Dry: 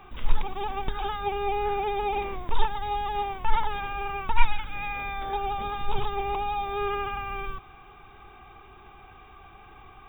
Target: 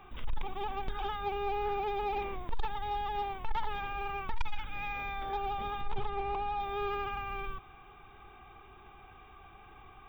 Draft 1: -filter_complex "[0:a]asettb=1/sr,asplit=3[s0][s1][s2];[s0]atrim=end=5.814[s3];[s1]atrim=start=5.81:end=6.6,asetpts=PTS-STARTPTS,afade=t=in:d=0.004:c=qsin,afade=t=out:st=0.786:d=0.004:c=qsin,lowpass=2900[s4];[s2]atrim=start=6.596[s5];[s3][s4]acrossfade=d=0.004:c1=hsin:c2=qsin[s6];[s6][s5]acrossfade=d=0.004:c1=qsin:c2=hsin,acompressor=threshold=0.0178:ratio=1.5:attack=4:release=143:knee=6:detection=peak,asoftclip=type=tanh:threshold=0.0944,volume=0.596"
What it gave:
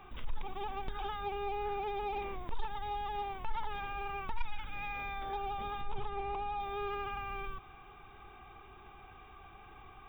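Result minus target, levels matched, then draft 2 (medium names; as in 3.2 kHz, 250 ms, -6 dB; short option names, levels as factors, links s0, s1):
compression: peak gain reduction +9.5 dB
-filter_complex "[0:a]asettb=1/sr,asplit=3[s0][s1][s2];[s0]atrim=end=5.814[s3];[s1]atrim=start=5.81:end=6.6,asetpts=PTS-STARTPTS,afade=t=in:d=0.004:c=qsin,afade=t=out:st=0.786:d=0.004:c=qsin,lowpass=2900[s4];[s2]atrim=start=6.596[s5];[s3][s4]acrossfade=d=0.004:c1=hsin:c2=qsin[s6];[s6][s5]acrossfade=d=0.004:c1=qsin:c2=hsin,asoftclip=type=tanh:threshold=0.0944,volume=0.596"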